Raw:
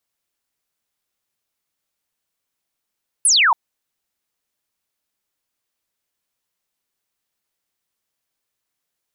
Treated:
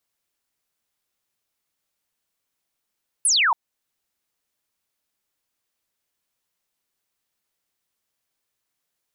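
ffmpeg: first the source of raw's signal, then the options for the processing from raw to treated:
-f lavfi -i "aevalsrc='0.282*clip(t/0.002,0,1)*clip((0.28-t)/0.002,0,1)*sin(2*PI*11000*0.28/log(850/11000)*(exp(log(850/11000)*t/0.28)-1))':d=0.28:s=44100"
-af "alimiter=limit=-15.5dB:level=0:latency=1:release=359"

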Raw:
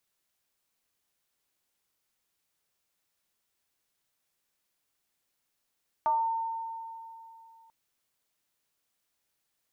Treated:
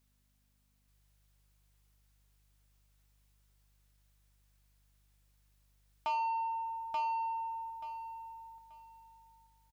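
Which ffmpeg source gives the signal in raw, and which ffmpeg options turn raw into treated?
-f lavfi -i "aevalsrc='0.0794*pow(10,-3*t/2.89)*sin(2*PI*907*t+0.63*pow(10,-3*t/0.42)*sin(2*PI*0.31*907*t))':d=1.64:s=44100"
-af "aeval=exprs='val(0)+0.000224*(sin(2*PI*50*n/s)+sin(2*PI*2*50*n/s)/2+sin(2*PI*3*50*n/s)/3+sin(2*PI*4*50*n/s)/4+sin(2*PI*5*50*n/s)/5)':c=same,asoftclip=type=tanh:threshold=-30.5dB,aecho=1:1:882|1764|2646:0.708|0.163|0.0375"

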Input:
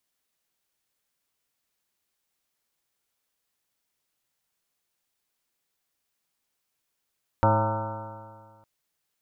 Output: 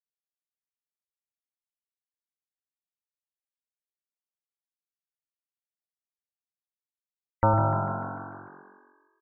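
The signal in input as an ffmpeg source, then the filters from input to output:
-f lavfi -i "aevalsrc='0.0891*pow(10,-3*t/1.85)*sin(2*PI*106.14*t)+0.0355*pow(10,-3*t/1.85)*sin(2*PI*213.14*t)+0.0335*pow(10,-3*t/1.85)*sin(2*PI*321.84*t)+0.0126*pow(10,-3*t/1.85)*sin(2*PI*433.06*t)+0.0708*pow(10,-3*t/1.85)*sin(2*PI*547.6*t)+0.0355*pow(10,-3*t/1.85)*sin(2*PI*666.19*t)+0.0355*pow(10,-3*t/1.85)*sin(2*PI*789.56*t)+0.1*pow(10,-3*t/1.85)*sin(2*PI*918.35*t)+0.015*pow(10,-3*t/1.85)*sin(2*PI*1053.17*t)+0.0251*pow(10,-3*t/1.85)*sin(2*PI*1194.56*t)+0.0355*pow(10,-3*t/1.85)*sin(2*PI*1343.03*t)+0.0126*pow(10,-3*t/1.85)*sin(2*PI*1499.02*t)':d=1.21:s=44100"
-filter_complex "[0:a]asplit=2[a][b];[b]aecho=0:1:105|210|315|420|525:0.447|0.192|0.0826|0.0355|0.0153[c];[a][c]amix=inputs=2:normalize=0,afftfilt=real='re*gte(hypot(re,im),0.0178)':imag='im*gte(hypot(re,im),0.0178)':win_size=1024:overlap=0.75,asplit=2[d][e];[e]asplit=7[f][g][h][i][j][k][l];[f]adelay=149,afreqshift=46,volume=-10.5dB[m];[g]adelay=298,afreqshift=92,volume=-14.8dB[n];[h]adelay=447,afreqshift=138,volume=-19.1dB[o];[i]adelay=596,afreqshift=184,volume=-23.4dB[p];[j]adelay=745,afreqshift=230,volume=-27.7dB[q];[k]adelay=894,afreqshift=276,volume=-32dB[r];[l]adelay=1043,afreqshift=322,volume=-36.3dB[s];[m][n][o][p][q][r][s]amix=inputs=7:normalize=0[t];[d][t]amix=inputs=2:normalize=0"

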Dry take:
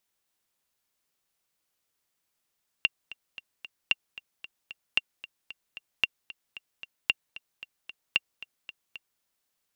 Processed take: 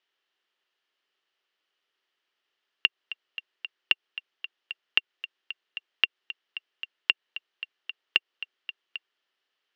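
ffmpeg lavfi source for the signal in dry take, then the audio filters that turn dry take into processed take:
-f lavfi -i "aevalsrc='pow(10,(-8.5-18.5*gte(mod(t,4*60/226),60/226))/20)*sin(2*PI*2770*mod(t,60/226))*exp(-6.91*mod(t,60/226)/0.03)':d=6.37:s=44100"
-af "acompressor=threshold=-25dB:ratio=6,highpass=350,equalizer=f=380:t=q:w=4:g=8,equalizer=f=1.3k:t=q:w=4:g=4,equalizer=f=1.8k:t=q:w=4:g=7,equalizer=f=3k:t=q:w=4:g=10,lowpass=f=4.9k:w=0.5412,lowpass=f=4.9k:w=1.3066"

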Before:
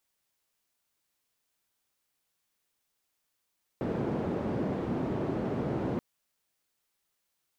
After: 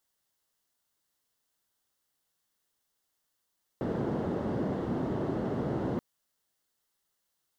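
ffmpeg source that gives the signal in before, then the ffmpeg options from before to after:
-f lavfi -i "anoisesrc=c=white:d=2.18:r=44100:seed=1,highpass=f=120,lowpass=f=350,volume=-7.4dB"
-af "equalizer=f=2.4k:t=o:w=0.2:g=-11.5"

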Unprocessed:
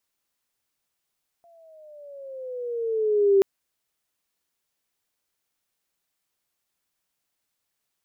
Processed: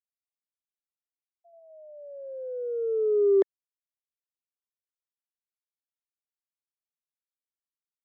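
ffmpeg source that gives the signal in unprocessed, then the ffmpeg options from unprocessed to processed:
-f lavfi -i "aevalsrc='pow(10,(-13+39*(t/1.98-1))/20)*sin(2*PI*689*1.98/(-10*log(2)/12)*(exp(-10*log(2)/12*t/1.98)-1))':d=1.98:s=44100"
-filter_complex "[0:a]afftfilt=real='re*gte(hypot(re,im),0.0224)':imag='im*gte(hypot(re,im),0.0224)':win_size=1024:overlap=0.75,highpass=f=350:w=0.5412,highpass=f=350:w=1.3066,acrossover=split=570[a][b];[b]asoftclip=type=tanh:threshold=-32dB[c];[a][c]amix=inputs=2:normalize=0"

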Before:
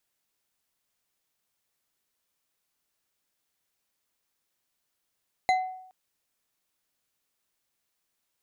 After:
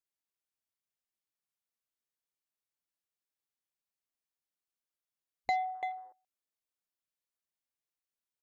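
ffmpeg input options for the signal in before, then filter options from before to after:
-f lavfi -i "aevalsrc='0.126*pow(10,-3*t/0.73)*sin(2*PI*746*t)+0.0562*pow(10,-3*t/0.359)*sin(2*PI*2056.7*t)+0.0251*pow(10,-3*t/0.224)*sin(2*PI*4031.4*t)+0.0112*pow(10,-3*t/0.158)*sin(2*PI*6664*t)+0.00501*pow(10,-3*t/0.119)*sin(2*PI*9951.6*t)':d=0.42:s=44100"
-filter_complex "[0:a]asplit=2[a][b];[b]aecho=0:1:338:0.266[c];[a][c]amix=inputs=2:normalize=0,alimiter=limit=-19.5dB:level=0:latency=1:release=210,afwtdn=0.00447"

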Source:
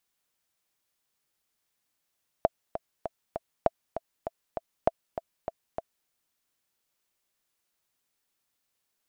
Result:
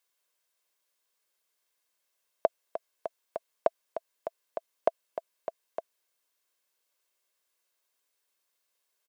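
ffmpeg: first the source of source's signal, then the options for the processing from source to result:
-f lavfi -i "aevalsrc='pow(10,(-7.5-11*gte(mod(t,4*60/198),60/198))/20)*sin(2*PI*663*mod(t,60/198))*exp(-6.91*mod(t,60/198)/0.03)':d=3.63:s=44100"
-af "highpass=310,aecho=1:1:1.9:0.38"

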